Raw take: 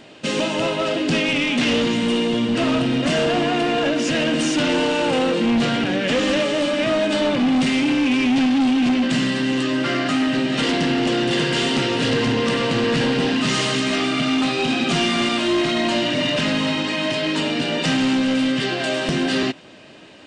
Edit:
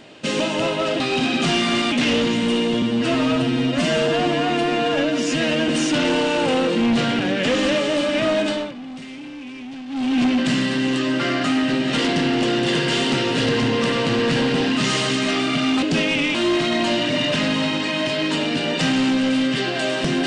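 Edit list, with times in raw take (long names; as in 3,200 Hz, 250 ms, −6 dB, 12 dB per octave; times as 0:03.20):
0:01.00–0:01.52: swap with 0:14.47–0:15.39
0:02.42–0:04.33: time-stretch 1.5×
0:07.06–0:08.84: duck −16.5 dB, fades 0.32 s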